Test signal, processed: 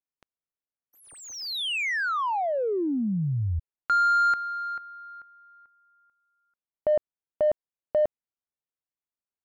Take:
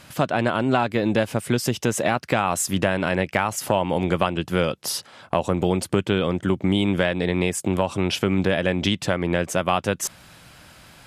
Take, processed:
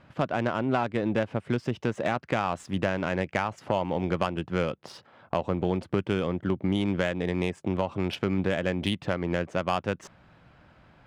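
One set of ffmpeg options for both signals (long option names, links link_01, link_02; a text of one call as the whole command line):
ffmpeg -i in.wav -af "adynamicsmooth=sensitivity=1:basefreq=1900,volume=-5.5dB" out.wav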